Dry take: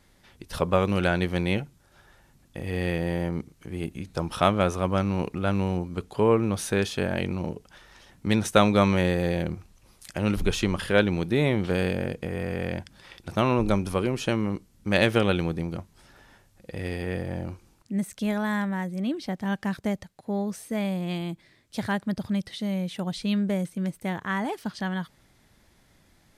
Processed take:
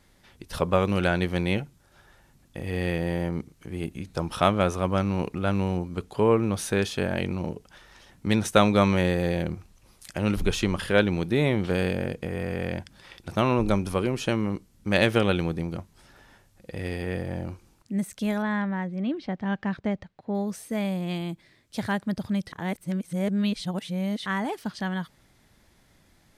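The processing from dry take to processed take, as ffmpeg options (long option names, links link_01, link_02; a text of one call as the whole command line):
ffmpeg -i in.wav -filter_complex "[0:a]asettb=1/sr,asplit=3[link_01][link_02][link_03];[link_01]atrim=end=18.424[link_04];[link_02]atrim=start=18.42:end=20.35,asetpts=PTS-STARTPTS,afade=type=in:duration=0.004:curve=qsin,afade=type=out:start_time=1.926:duration=0.004:curve=qsin,lowpass=3200[link_05];[link_03]atrim=start=20.346[link_06];[link_04][link_05]acrossfade=duration=0.004:curve1=hsin:curve2=qsin[link_07];[link_07][link_06]acrossfade=duration=0.004:curve1=qsin:curve2=hsin,asplit=3[link_08][link_09][link_10];[link_08]atrim=end=22.522[link_11];[link_09]atrim=start=22.518:end=24.262,asetpts=PTS-STARTPTS,areverse[link_12];[link_10]atrim=start=24.258[link_13];[link_11][link_12]acrossfade=duration=0.004:curve1=hsin:curve2=hsin[link_14];[link_14][link_13]acrossfade=duration=0.004:curve1=hsin:curve2=hsin" out.wav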